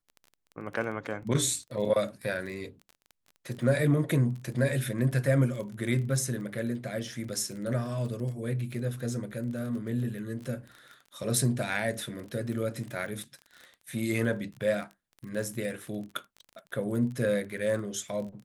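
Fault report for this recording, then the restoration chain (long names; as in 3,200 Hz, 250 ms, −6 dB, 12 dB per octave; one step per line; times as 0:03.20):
surface crackle 23 per second −37 dBFS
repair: click removal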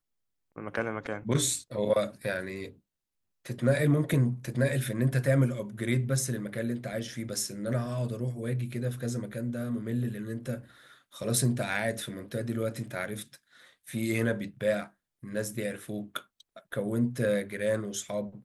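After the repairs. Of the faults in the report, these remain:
none of them is left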